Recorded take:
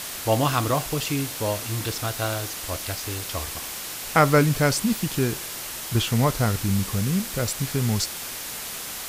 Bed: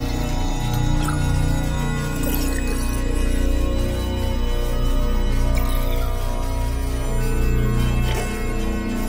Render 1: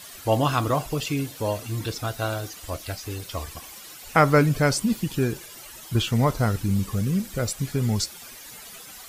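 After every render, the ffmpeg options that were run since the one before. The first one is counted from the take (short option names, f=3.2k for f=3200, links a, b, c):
-af "afftdn=nr=13:nf=-34"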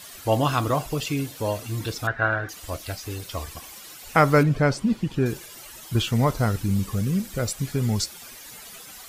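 -filter_complex "[0:a]asettb=1/sr,asplit=3[a][b][c];[a]atrim=end=2.074[d];[b]atrim=start=2.07:end=2.49,asetpts=PTS-STARTPTS,afade=t=in:d=0.004:c=qsin,afade=t=out:st=0.416:d=0.004:c=qsin,lowpass=f=1.7k:t=q:w=8.2[e];[c]atrim=start=2.486[f];[d][e]acrossfade=d=0.004:c1=hsin:c2=qsin[g];[g][f]acrossfade=d=0.004:c1=qsin:c2=hsin,asettb=1/sr,asplit=3[h][i][j];[h]atrim=end=4.434[k];[i]atrim=start=4.43:end=5.26,asetpts=PTS-STARTPTS,afade=t=in:d=0.004:c=qsin,afade=t=out:st=0.826:d=0.004:c=qsin,aemphasis=mode=reproduction:type=75fm[l];[j]atrim=start=5.256[m];[k][l]acrossfade=d=0.004:c1=hsin:c2=qsin[n];[n][m]acrossfade=d=0.004:c1=qsin:c2=hsin"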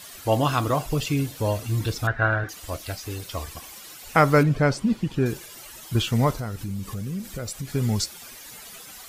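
-filter_complex "[0:a]asettb=1/sr,asplit=3[a][b][c];[a]atrim=end=0.884[d];[b]atrim=start=0.88:end=2.44,asetpts=PTS-STARTPTS,afade=t=in:d=0.004:c=qsin,afade=t=out:st=1.556:d=0.004:c=qsin,lowshelf=f=120:g=9.5[e];[c]atrim=start=2.436[f];[d][e]acrossfade=d=0.004:c1=hsin:c2=qsin[g];[g][f]acrossfade=d=0.004:c1=qsin:c2=hsin,asettb=1/sr,asplit=3[h][i][j];[h]atrim=end=6.324[k];[i]atrim=start=6.32:end=7.75,asetpts=PTS-STARTPTS,afade=t=in:d=0.004:c=qsin,afade=t=out:st=1.426:d=0.004:c=qsin,acompressor=threshold=-30dB:ratio=2.5:attack=3.2:release=140:knee=1:detection=peak[l];[j]atrim=start=7.746[m];[k][l]acrossfade=d=0.004:c1=hsin:c2=qsin[n];[n][m]acrossfade=d=0.004:c1=qsin:c2=hsin"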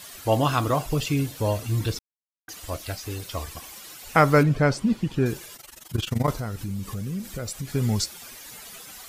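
-filter_complex "[0:a]asettb=1/sr,asplit=3[a][b][c];[a]atrim=end=5.564[d];[b]atrim=start=5.56:end=6.28,asetpts=PTS-STARTPTS,afade=t=in:d=0.004:c=qsin,afade=t=out:st=0.716:d=0.004:c=qsin,tremolo=f=23:d=0.889[e];[c]atrim=start=6.276[f];[d][e]acrossfade=d=0.004:c1=hsin:c2=qsin[g];[g][f]acrossfade=d=0.004:c1=qsin:c2=hsin,asplit=3[h][i][j];[h]atrim=end=1.99,asetpts=PTS-STARTPTS,afade=t=out:st=1.986:d=0.004:c=hsin[k];[i]atrim=start=1.99:end=2.48,asetpts=PTS-STARTPTS,volume=0[l];[j]atrim=start=2.48,asetpts=PTS-STARTPTS,afade=t=in:d=0.004:c=hsin[m];[k][l][m]concat=n=3:v=0:a=1"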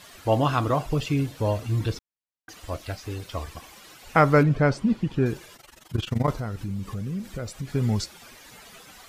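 -af "lowpass=f=3k:p=1"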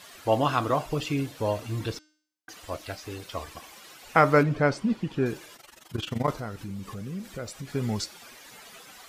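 -af "lowshelf=f=140:g=-12,bandreject=f=305.9:t=h:w=4,bandreject=f=611.8:t=h:w=4,bandreject=f=917.7:t=h:w=4,bandreject=f=1.2236k:t=h:w=4,bandreject=f=1.5295k:t=h:w=4,bandreject=f=1.8354k:t=h:w=4,bandreject=f=2.1413k:t=h:w=4,bandreject=f=2.4472k:t=h:w=4,bandreject=f=2.7531k:t=h:w=4,bandreject=f=3.059k:t=h:w=4,bandreject=f=3.3649k:t=h:w=4,bandreject=f=3.6708k:t=h:w=4,bandreject=f=3.9767k:t=h:w=4,bandreject=f=4.2826k:t=h:w=4,bandreject=f=4.5885k:t=h:w=4,bandreject=f=4.8944k:t=h:w=4,bandreject=f=5.2003k:t=h:w=4,bandreject=f=5.5062k:t=h:w=4,bandreject=f=5.8121k:t=h:w=4,bandreject=f=6.118k:t=h:w=4,bandreject=f=6.4239k:t=h:w=4,bandreject=f=6.7298k:t=h:w=4,bandreject=f=7.0357k:t=h:w=4,bandreject=f=7.3416k:t=h:w=4,bandreject=f=7.6475k:t=h:w=4,bandreject=f=7.9534k:t=h:w=4,bandreject=f=8.2593k:t=h:w=4,bandreject=f=8.5652k:t=h:w=4"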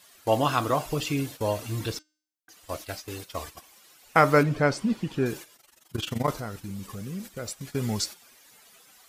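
-af "agate=range=-11dB:threshold=-40dB:ratio=16:detection=peak,highshelf=f=5.9k:g=10"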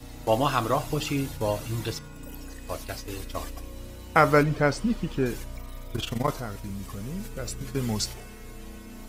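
-filter_complex "[1:a]volume=-19.5dB[a];[0:a][a]amix=inputs=2:normalize=0"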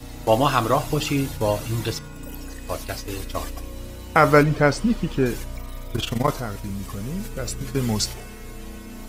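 -af "volume=5dB,alimiter=limit=-2dB:level=0:latency=1"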